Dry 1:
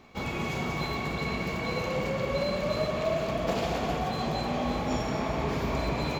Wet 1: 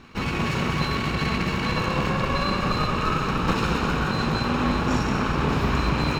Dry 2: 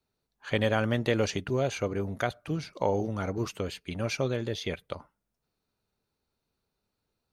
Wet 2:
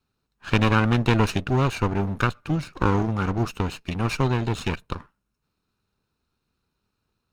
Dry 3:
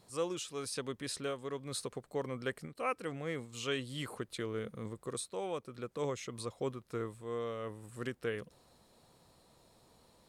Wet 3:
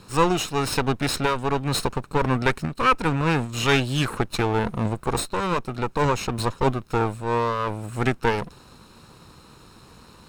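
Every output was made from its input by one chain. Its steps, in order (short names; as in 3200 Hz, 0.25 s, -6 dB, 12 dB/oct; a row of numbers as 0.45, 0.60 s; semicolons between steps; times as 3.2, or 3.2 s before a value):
minimum comb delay 0.75 ms; high shelf 6500 Hz -8.5 dB; match loudness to -24 LUFS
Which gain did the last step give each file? +8.5, +7.0, +18.5 dB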